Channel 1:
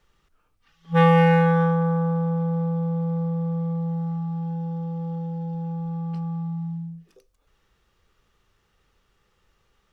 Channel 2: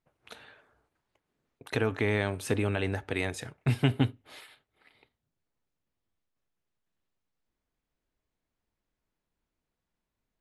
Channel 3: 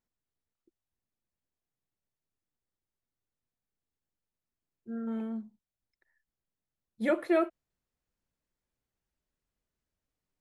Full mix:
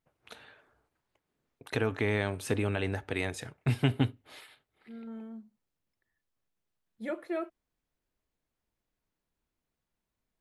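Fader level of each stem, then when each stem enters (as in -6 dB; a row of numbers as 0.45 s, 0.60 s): mute, -1.5 dB, -8.0 dB; mute, 0.00 s, 0.00 s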